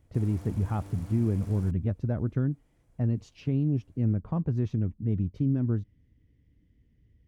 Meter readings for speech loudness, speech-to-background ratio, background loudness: -29.5 LUFS, 16.5 dB, -46.0 LUFS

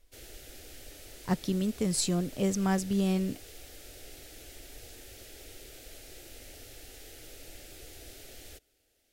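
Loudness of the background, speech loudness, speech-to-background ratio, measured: -48.0 LUFS, -30.0 LUFS, 18.0 dB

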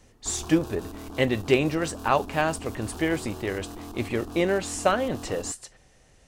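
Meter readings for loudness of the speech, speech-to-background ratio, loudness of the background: -27.0 LUFS, 13.5 dB, -40.5 LUFS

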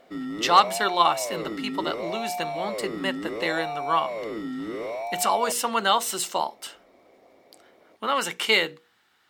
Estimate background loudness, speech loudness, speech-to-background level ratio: -32.0 LUFS, -25.0 LUFS, 7.0 dB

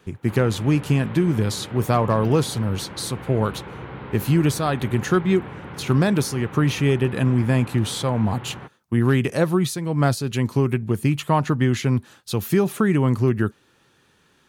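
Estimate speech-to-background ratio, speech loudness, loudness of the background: 15.5 dB, -21.5 LUFS, -37.0 LUFS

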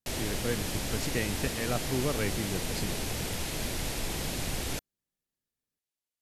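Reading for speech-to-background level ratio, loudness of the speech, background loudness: -1.5 dB, -35.0 LUFS, -33.5 LUFS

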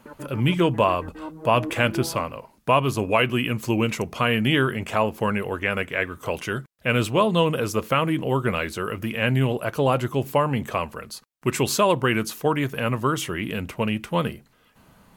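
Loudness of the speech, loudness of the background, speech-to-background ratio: -23.5 LUFS, -37.5 LUFS, 14.0 dB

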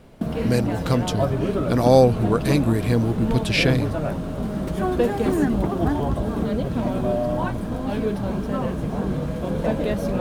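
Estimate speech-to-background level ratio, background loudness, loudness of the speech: 3.5 dB, -25.0 LUFS, -21.5 LUFS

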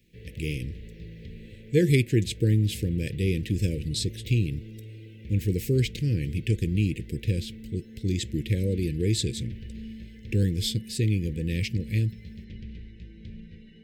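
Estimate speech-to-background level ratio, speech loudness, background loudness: 15.5 dB, -27.5 LUFS, -43.0 LUFS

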